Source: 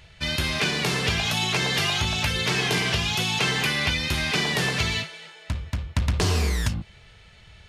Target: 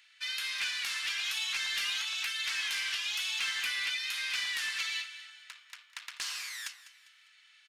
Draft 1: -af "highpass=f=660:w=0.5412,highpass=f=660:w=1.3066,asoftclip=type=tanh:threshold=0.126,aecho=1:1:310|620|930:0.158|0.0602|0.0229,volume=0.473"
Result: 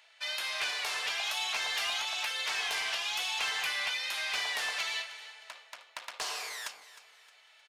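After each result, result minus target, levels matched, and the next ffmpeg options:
500 Hz band +17.5 dB; echo 110 ms late
-af "highpass=f=1400:w=0.5412,highpass=f=1400:w=1.3066,asoftclip=type=tanh:threshold=0.126,aecho=1:1:310|620|930:0.158|0.0602|0.0229,volume=0.473"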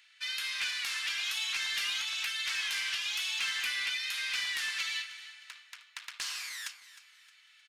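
echo 110 ms late
-af "highpass=f=1400:w=0.5412,highpass=f=1400:w=1.3066,asoftclip=type=tanh:threshold=0.126,aecho=1:1:200|400|600:0.158|0.0602|0.0229,volume=0.473"

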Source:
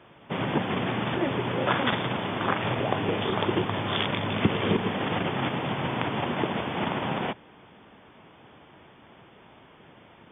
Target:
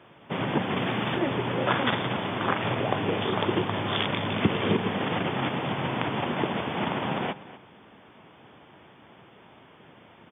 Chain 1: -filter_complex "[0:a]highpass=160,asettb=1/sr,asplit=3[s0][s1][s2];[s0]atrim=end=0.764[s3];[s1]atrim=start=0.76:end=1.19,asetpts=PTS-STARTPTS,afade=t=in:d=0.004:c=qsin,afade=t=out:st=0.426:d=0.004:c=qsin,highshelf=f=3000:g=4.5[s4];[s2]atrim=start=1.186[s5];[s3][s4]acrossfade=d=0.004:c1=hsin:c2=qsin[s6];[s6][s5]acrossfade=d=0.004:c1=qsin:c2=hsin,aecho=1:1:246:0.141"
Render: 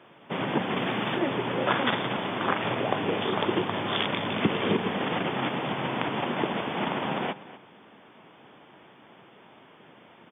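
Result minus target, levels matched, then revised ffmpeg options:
125 Hz band -3.5 dB
-filter_complex "[0:a]highpass=72,asettb=1/sr,asplit=3[s0][s1][s2];[s0]atrim=end=0.764[s3];[s1]atrim=start=0.76:end=1.19,asetpts=PTS-STARTPTS,afade=t=in:d=0.004:c=qsin,afade=t=out:st=0.426:d=0.004:c=qsin,highshelf=f=3000:g=4.5[s4];[s2]atrim=start=1.186[s5];[s3][s4]acrossfade=d=0.004:c1=hsin:c2=qsin[s6];[s6][s5]acrossfade=d=0.004:c1=qsin:c2=hsin,aecho=1:1:246:0.141"

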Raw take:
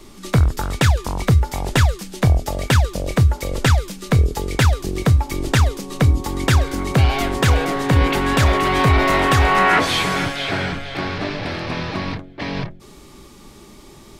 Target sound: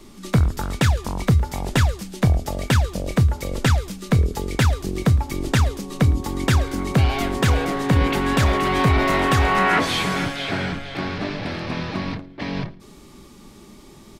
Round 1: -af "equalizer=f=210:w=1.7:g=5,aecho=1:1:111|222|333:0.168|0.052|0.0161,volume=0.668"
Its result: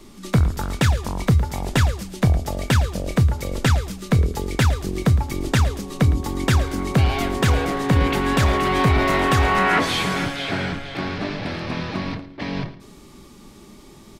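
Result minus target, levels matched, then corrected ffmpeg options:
echo-to-direct +7.5 dB
-af "equalizer=f=210:w=1.7:g=5,aecho=1:1:111|222:0.0708|0.0219,volume=0.668"

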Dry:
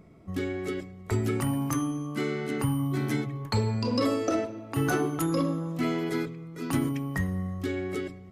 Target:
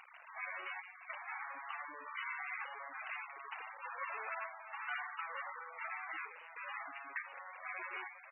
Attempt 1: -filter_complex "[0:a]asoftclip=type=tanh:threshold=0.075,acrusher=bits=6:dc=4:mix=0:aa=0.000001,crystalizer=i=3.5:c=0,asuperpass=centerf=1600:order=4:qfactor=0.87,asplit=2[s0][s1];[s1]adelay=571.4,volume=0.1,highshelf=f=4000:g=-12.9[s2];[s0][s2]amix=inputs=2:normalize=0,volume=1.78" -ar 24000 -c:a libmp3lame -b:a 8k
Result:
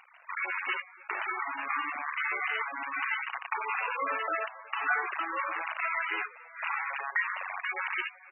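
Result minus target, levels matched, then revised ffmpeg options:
saturation: distortion -10 dB
-filter_complex "[0:a]asoftclip=type=tanh:threshold=0.02,acrusher=bits=6:dc=4:mix=0:aa=0.000001,crystalizer=i=3.5:c=0,asuperpass=centerf=1600:order=4:qfactor=0.87,asplit=2[s0][s1];[s1]adelay=571.4,volume=0.1,highshelf=f=4000:g=-12.9[s2];[s0][s2]amix=inputs=2:normalize=0,volume=1.78" -ar 24000 -c:a libmp3lame -b:a 8k

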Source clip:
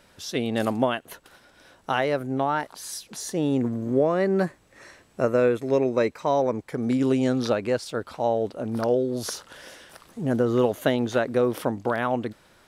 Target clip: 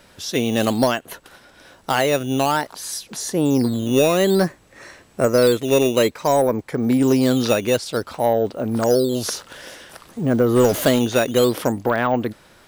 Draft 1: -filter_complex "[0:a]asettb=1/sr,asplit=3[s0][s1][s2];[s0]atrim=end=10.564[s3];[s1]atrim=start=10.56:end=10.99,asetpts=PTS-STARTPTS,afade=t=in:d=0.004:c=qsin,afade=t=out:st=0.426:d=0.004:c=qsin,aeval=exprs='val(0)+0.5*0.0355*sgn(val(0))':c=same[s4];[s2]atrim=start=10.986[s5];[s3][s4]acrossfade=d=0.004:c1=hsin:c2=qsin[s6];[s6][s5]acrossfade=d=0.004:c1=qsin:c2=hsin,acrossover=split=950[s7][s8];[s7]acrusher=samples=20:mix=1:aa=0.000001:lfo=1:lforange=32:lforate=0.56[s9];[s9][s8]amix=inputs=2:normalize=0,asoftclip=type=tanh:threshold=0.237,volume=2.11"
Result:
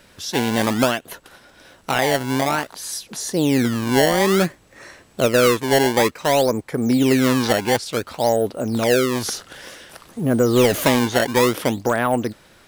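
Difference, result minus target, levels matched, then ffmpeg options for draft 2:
decimation with a swept rate: distortion +9 dB
-filter_complex "[0:a]asettb=1/sr,asplit=3[s0][s1][s2];[s0]atrim=end=10.564[s3];[s1]atrim=start=10.56:end=10.99,asetpts=PTS-STARTPTS,afade=t=in:d=0.004:c=qsin,afade=t=out:st=0.426:d=0.004:c=qsin,aeval=exprs='val(0)+0.5*0.0355*sgn(val(0))':c=same[s4];[s2]atrim=start=10.986[s5];[s3][s4]acrossfade=d=0.004:c1=hsin:c2=qsin[s6];[s6][s5]acrossfade=d=0.004:c1=qsin:c2=hsin,acrossover=split=950[s7][s8];[s7]acrusher=samples=8:mix=1:aa=0.000001:lfo=1:lforange=12.8:lforate=0.56[s9];[s9][s8]amix=inputs=2:normalize=0,asoftclip=type=tanh:threshold=0.237,volume=2.11"

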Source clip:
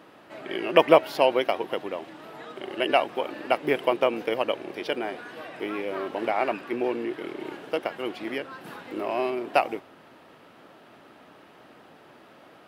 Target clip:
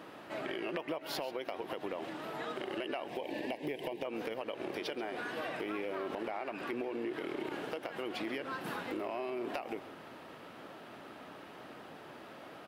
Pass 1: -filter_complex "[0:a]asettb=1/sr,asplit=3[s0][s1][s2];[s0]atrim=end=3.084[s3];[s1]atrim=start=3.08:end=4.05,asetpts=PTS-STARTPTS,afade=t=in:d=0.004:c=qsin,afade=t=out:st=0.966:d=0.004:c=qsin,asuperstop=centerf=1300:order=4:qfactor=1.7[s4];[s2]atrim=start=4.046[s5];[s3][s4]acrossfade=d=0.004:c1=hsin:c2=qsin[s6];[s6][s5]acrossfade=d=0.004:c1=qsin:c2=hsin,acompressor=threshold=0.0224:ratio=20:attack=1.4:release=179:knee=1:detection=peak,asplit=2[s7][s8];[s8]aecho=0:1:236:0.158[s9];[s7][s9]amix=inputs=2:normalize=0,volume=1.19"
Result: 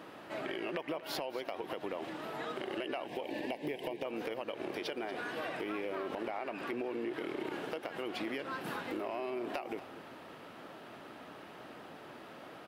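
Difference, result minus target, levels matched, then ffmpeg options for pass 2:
echo 101 ms late
-filter_complex "[0:a]asettb=1/sr,asplit=3[s0][s1][s2];[s0]atrim=end=3.084[s3];[s1]atrim=start=3.08:end=4.05,asetpts=PTS-STARTPTS,afade=t=in:d=0.004:c=qsin,afade=t=out:st=0.966:d=0.004:c=qsin,asuperstop=centerf=1300:order=4:qfactor=1.7[s4];[s2]atrim=start=4.046[s5];[s3][s4]acrossfade=d=0.004:c1=hsin:c2=qsin[s6];[s6][s5]acrossfade=d=0.004:c1=qsin:c2=hsin,acompressor=threshold=0.0224:ratio=20:attack=1.4:release=179:knee=1:detection=peak,asplit=2[s7][s8];[s8]aecho=0:1:135:0.158[s9];[s7][s9]amix=inputs=2:normalize=0,volume=1.19"

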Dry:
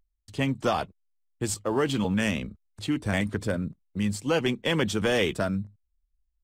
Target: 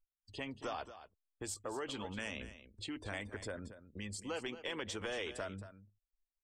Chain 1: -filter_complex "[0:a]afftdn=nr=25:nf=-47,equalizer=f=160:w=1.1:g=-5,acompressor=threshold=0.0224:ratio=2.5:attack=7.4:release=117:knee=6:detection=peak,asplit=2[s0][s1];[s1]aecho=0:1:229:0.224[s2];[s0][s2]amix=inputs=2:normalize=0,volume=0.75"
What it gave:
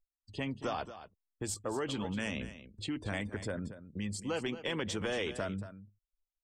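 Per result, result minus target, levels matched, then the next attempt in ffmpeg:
compression: peak gain reduction -4 dB; 125 Hz band +3.5 dB
-filter_complex "[0:a]afftdn=nr=25:nf=-47,equalizer=f=160:w=1.1:g=-5,acompressor=threshold=0.00891:ratio=2.5:attack=7.4:release=117:knee=6:detection=peak,asplit=2[s0][s1];[s1]aecho=0:1:229:0.224[s2];[s0][s2]amix=inputs=2:normalize=0,volume=0.75"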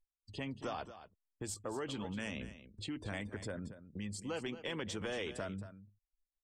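125 Hz band +3.5 dB
-filter_complex "[0:a]afftdn=nr=25:nf=-47,equalizer=f=160:w=1.1:g=-17,acompressor=threshold=0.00891:ratio=2.5:attack=7.4:release=117:knee=6:detection=peak,asplit=2[s0][s1];[s1]aecho=0:1:229:0.224[s2];[s0][s2]amix=inputs=2:normalize=0,volume=0.75"

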